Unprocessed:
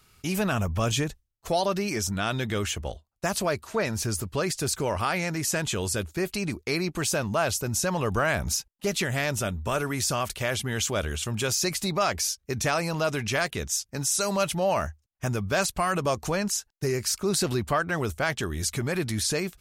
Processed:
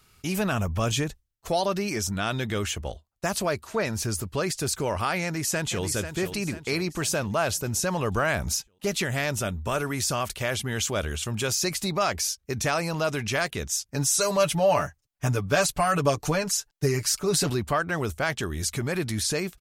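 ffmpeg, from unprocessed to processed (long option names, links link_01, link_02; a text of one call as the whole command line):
ffmpeg -i in.wav -filter_complex "[0:a]asplit=2[link_01][link_02];[link_02]afade=type=in:start_time=5.22:duration=0.01,afade=type=out:start_time=5.84:duration=0.01,aecho=0:1:490|980|1470|1960|2450|2940:0.354813|0.177407|0.0887033|0.0443517|0.0221758|0.0110879[link_03];[link_01][link_03]amix=inputs=2:normalize=0,asettb=1/sr,asplit=3[link_04][link_05][link_06];[link_04]atrim=end=13.934[link_07];[link_05]atrim=start=13.93:end=17.5,asetpts=PTS-STARTPTS,afade=type=in:duration=0.004:curve=qsin,afade=type=out:start_time=3.566:duration=0.004:curve=qsin,aecho=1:1:6.9:0.81,atrim=end_sample=157437[link_08];[link_06]atrim=start=17.496[link_09];[link_07][link_08]acrossfade=duration=0.004:curve1=hsin:curve2=qsin[link_10];[link_10][link_09]acrossfade=duration=0.004:curve1=qsin:curve2=hsin" out.wav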